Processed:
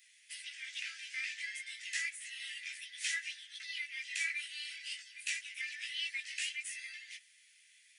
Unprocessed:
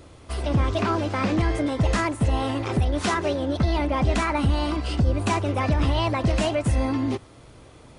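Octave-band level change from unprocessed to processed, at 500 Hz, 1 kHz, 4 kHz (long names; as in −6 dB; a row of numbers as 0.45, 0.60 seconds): below −40 dB, below −40 dB, −6.0 dB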